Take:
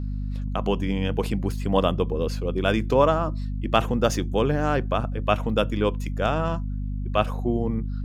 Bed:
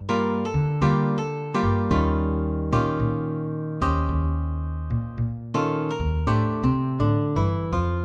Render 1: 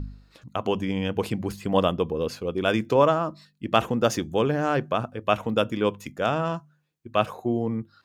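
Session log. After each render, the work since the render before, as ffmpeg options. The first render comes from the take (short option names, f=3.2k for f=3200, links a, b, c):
-af "bandreject=f=50:t=h:w=4,bandreject=f=100:t=h:w=4,bandreject=f=150:t=h:w=4,bandreject=f=200:t=h:w=4,bandreject=f=250:t=h:w=4"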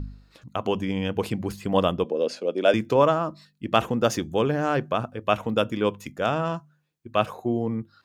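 -filter_complex "[0:a]asettb=1/sr,asplit=3[a][b][c];[a]atrim=end=2.044[d];[b]atrim=start=2.04:end=2.74,asetpts=PTS-STARTPTS,afade=t=in:d=0.004:c=qsin,afade=t=out:st=0.696:d=0.004:c=qsin,highpass=f=220:w=0.5412,highpass=f=220:w=1.3066,equalizer=f=590:t=q:w=4:g=10,equalizer=f=1.1k:t=q:w=4:g=-7,equalizer=f=5.1k:t=q:w=4:g=3,lowpass=f=9.5k:w=0.5412,lowpass=f=9.5k:w=1.3066[e];[c]atrim=start=2.736[f];[d][e]acrossfade=d=0.004:c1=hsin:c2=qsin[g];[g][f]acrossfade=d=0.004:c1=qsin:c2=hsin"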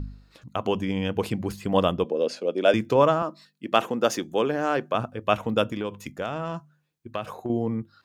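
-filter_complex "[0:a]asettb=1/sr,asplit=3[a][b][c];[a]atrim=end=3.224[d];[b]atrim=start=3.22:end=4.95,asetpts=PTS-STARTPTS,afade=t=in:d=0.004:c=qsin,afade=t=out:st=1.726:d=0.004:c=qsin,highpass=240[e];[c]atrim=start=4.946[f];[d][e]acrossfade=d=0.004:c1=hsin:c2=qsin[g];[g][f]acrossfade=d=0.004:c1=qsin:c2=hsin,asettb=1/sr,asplit=3[h][i][j];[h]atrim=end=5.644[k];[i]atrim=start=5.64:end=7.5,asetpts=PTS-STARTPTS,afade=t=in:d=0.004:c=qsin,afade=t=out:st=1.856:d=0.004:c=qsin,acompressor=threshold=-25dB:ratio=6:attack=3.2:release=140:knee=1:detection=peak[l];[j]atrim=start=7.496[m];[k][l]acrossfade=d=0.004:c1=hsin:c2=qsin[n];[n][m]acrossfade=d=0.004:c1=qsin:c2=hsin"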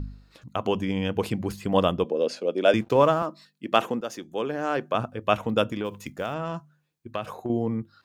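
-filter_complex "[0:a]asettb=1/sr,asplit=3[a][b][c];[a]atrim=end=2.814[d];[b]atrim=start=2.81:end=3.26,asetpts=PTS-STARTPTS,afade=t=in:d=0.004:c=qsin,afade=t=out:st=0.446:d=0.004:c=qsin,aeval=exprs='sgn(val(0))*max(abs(val(0))-0.00398,0)':c=same[e];[c]atrim=start=3.256[f];[d][e]acrossfade=d=0.004:c1=hsin:c2=qsin[g];[g][f]acrossfade=d=0.004:c1=qsin:c2=hsin,asplit=3[h][i][j];[h]afade=t=out:st=5.84:d=0.02[k];[i]acrusher=bits=8:mode=log:mix=0:aa=0.000001,afade=t=in:st=5.84:d=0.02,afade=t=out:st=6.33:d=0.02[l];[j]afade=t=in:st=6.33:d=0.02[m];[k][l][m]amix=inputs=3:normalize=0,asplit=2[n][o];[n]atrim=end=4.01,asetpts=PTS-STARTPTS,afade=t=out:st=4.006:d=0.004:c=hsin:silence=0.237137[p];[o]atrim=start=4.01,asetpts=PTS-STARTPTS,afade=t=in:d=0.96:silence=0.237137[q];[p][q]concat=n=2:v=0:a=1"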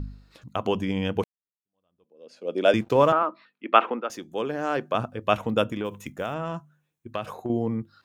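-filter_complex "[0:a]asettb=1/sr,asplit=3[a][b][c];[a]atrim=end=3.124[d];[b]atrim=start=3.12:end=4.1,asetpts=PTS-STARTPTS,afade=t=in:d=0.004:c=qsin,afade=t=out:st=0.976:d=0.004:c=qsin,highpass=f=250:w=0.5412,highpass=f=250:w=1.3066,equalizer=f=920:t=q:w=4:g=4,equalizer=f=1.3k:t=q:w=4:g=8,equalizer=f=2.3k:t=q:w=4:g=6,lowpass=f=3.2k:w=0.5412,lowpass=f=3.2k:w=1.3066[e];[c]atrim=start=4.096[f];[d][e]acrossfade=d=0.004:c1=hsin:c2=qsin[g];[g][f]acrossfade=d=0.004:c1=qsin:c2=hsin,asettb=1/sr,asplit=3[h][i][j];[h]atrim=end=5.534[k];[i]atrim=start=5.53:end=7.12,asetpts=PTS-STARTPTS,afade=t=in:d=0.004:c=qsin,afade=t=out:st=1.586:d=0.004:c=qsin,equalizer=f=4.6k:t=o:w=0.3:g=-11[l];[j]atrim=start=7.116[m];[k][l]acrossfade=d=0.004:c1=hsin:c2=qsin[n];[n][m]acrossfade=d=0.004:c1=qsin:c2=hsin,asplit=2[o][p];[o]atrim=end=1.24,asetpts=PTS-STARTPTS,afade=t=out:st=1.236:d=0.004:c=hsin[q];[p]atrim=start=1.24,asetpts=PTS-STARTPTS,afade=t=in:d=1.3:c=exp[r];[q][r]concat=n=2:v=0:a=1"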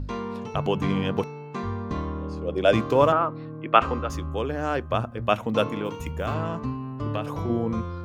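-filter_complex "[1:a]volume=-9dB[a];[0:a][a]amix=inputs=2:normalize=0"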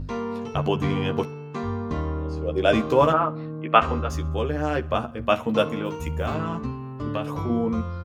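-filter_complex "[0:a]asplit=2[a][b];[b]adelay=13,volume=-5dB[c];[a][c]amix=inputs=2:normalize=0,aecho=1:1:64|128|192:0.0708|0.0361|0.0184"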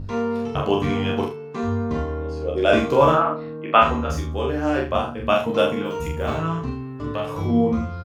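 -filter_complex "[0:a]asplit=2[a][b];[b]adelay=30,volume=-5dB[c];[a][c]amix=inputs=2:normalize=0,aecho=1:1:43|80:0.473|0.299"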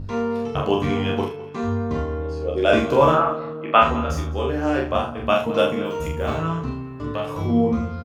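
-filter_complex "[0:a]asplit=2[a][b];[b]adelay=208,lowpass=f=4.7k:p=1,volume=-18dB,asplit=2[c][d];[d]adelay=208,lowpass=f=4.7k:p=1,volume=0.37,asplit=2[e][f];[f]adelay=208,lowpass=f=4.7k:p=1,volume=0.37[g];[a][c][e][g]amix=inputs=4:normalize=0"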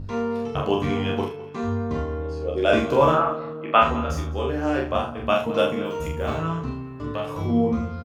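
-af "volume=-2dB"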